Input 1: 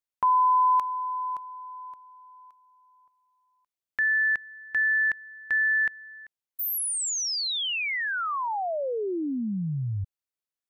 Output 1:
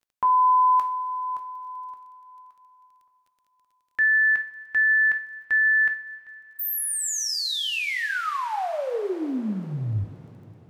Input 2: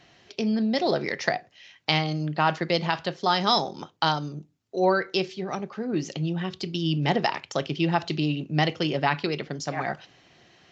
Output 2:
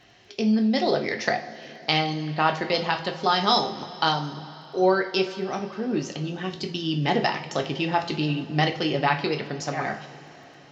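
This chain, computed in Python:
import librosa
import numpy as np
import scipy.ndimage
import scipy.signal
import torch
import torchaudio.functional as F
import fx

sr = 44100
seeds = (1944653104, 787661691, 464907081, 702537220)

y = fx.rev_double_slope(x, sr, seeds[0], early_s=0.35, late_s=4.4, knee_db=-19, drr_db=4.0)
y = fx.dmg_crackle(y, sr, seeds[1], per_s=16.0, level_db=-51.0)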